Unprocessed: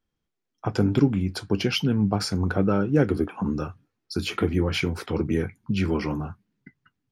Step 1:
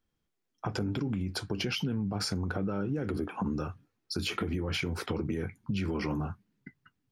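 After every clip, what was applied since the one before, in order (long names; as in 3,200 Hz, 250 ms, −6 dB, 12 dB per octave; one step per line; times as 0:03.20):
brickwall limiter −19 dBFS, peak gain reduction 11 dB
downward compressor, threshold −28 dBFS, peak gain reduction 6 dB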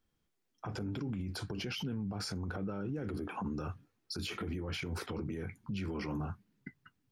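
brickwall limiter −31.5 dBFS, peak gain reduction 11 dB
level +1 dB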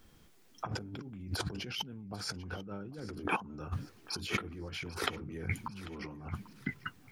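compressor whose output falls as the input rises −46 dBFS, ratio −0.5
feedback echo with a high-pass in the loop 793 ms, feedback 46%, high-pass 690 Hz, level −17 dB
level +9 dB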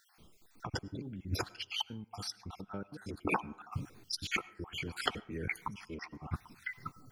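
time-frequency cells dropped at random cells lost 51%
on a send at −22 dB: convolution reverb RT60 0.65 s, pre-delay 60 ms
on the sum: level +2.5 dB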